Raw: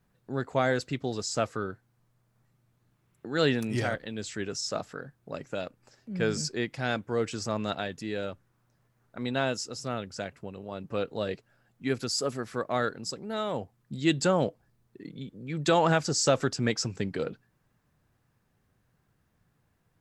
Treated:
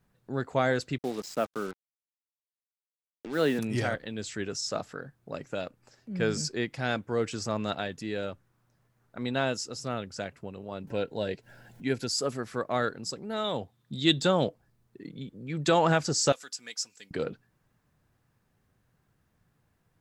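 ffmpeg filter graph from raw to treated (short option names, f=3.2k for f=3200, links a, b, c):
-filter_complex "[0:a]asettb=1/sr,asplit=3[a][b][c];[a]atrim=end=0.984[d];[b]atrim=start=0.98:end=3.59,asetpts=PTS-STARTPTS,afade=t=in:d=0.004:c=qsin,afade=t=out:st=2.606:d=0.004:c=qsin,highpass=f=170:w=0.5412,highpass=f=170:w=1.3066,equalizer=f=8.2k:w=0.36:g=-11,acrusher=bits=6:mix=0:aa=0.5[e];[c]atrim=start=3.586[f];[d][e]acrossfade=d=0.004:c1=hsin:c2=qsin[g];[g][f]acrossfade=d=0.004:c1=qsin:c2=hsin,asettb=1/sr,asplit=3[h][i][j];[h]atrim=end=10.874[k];[i]atrim=start=10.87:end=12.15,asetpts=PTS-STARTPTS,afade=t=in:d=0.004:c=qsin,afade=t=out:st=1.276:d=0.004:c=qsin,acompressor=mode=upward:threshold=-38dB:ratio=2.5:attack=3.2:release=140:knee=2.83:detection=peak,asuperstop=centerf=1200:order=8:qfactor=4.9[l];[j]atrim=start=12.146[m];[k][l]acrossfade=d=0.004:c1=hsin:c2=qsin[n];[n][m]acrossfade=d=0.004:c1=qsin:c2=hsin,asettb=1/sr,asplit=3[o][p][q];[o]atrim=end=13.444[r];[p]atrim=start=13.44:end=14.48,asetpts=PTS-STARTPTS,afade=t=in:d=0.004:c=qsin,afade=t=out:st=1.036:d=0.004:c=qsin,deesser=0.65,highpass=56,equalizer=f=3.6k:t=o:w=0.26:g=14.5[s];[q]atrim=start=14.476[t];[r][s]acrossfade=d=0.004:c1=hsin:c2=qsin[u];[u][t]acrossfade=d=0.004:c1=qsin:c2=hsin,asettb=1/sr,asplit=3[v][w][x];[v]atrim=end=16.324[y];[w]atrim=start=16.32:end=17.11,asetpts=PTS-STARTPTS,afade=t=in:d=0.004:c=qsin,afade=t=out:st=0.786:d=0.004:c=qsin,aderivative,aecho=1:1:4.1:0.39,atrim=end_sample=34839[z];[x]atrim=start=17.106[aa];[y][z]acrossfade=d=0.004:c1=hsin:c2=qsin[ab];[ab][aa]acrossfade=d=0.004:c1=qsin:c2=hsin"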